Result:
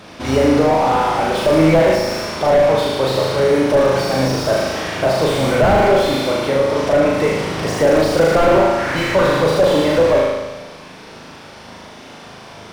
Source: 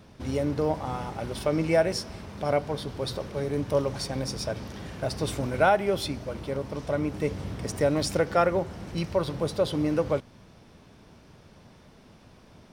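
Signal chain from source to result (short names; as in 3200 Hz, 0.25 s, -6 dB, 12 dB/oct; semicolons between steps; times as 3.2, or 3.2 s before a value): 8.78–9.27 bell 1700 Hz +14.5 dB 0.77 oct; overdrive pedal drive 18 dB, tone 5700 Hz, clips at -9 dBFS; on a send: flutter echo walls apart 6.5 m, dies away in 1.1 s; on the sum: slew limiter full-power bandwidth 110 Hz; gain +5.5 dB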